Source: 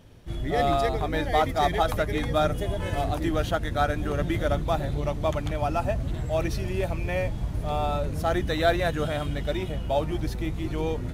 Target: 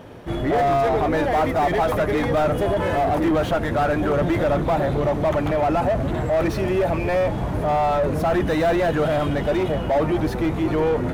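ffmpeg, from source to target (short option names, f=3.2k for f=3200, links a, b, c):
-filter_complex "[0:a]asplit=2[a][b];[b]highpass=f=720:p=1,volume=29dB,asoftclip=type=tanh:threshold=-10dB[c];[a][c]amix=inputs=2:normalize=0,lowpass=f=2.2k:p=1,volume=-6dB,equalizer=f=4.3k:t=o:w=3:g=-10.5"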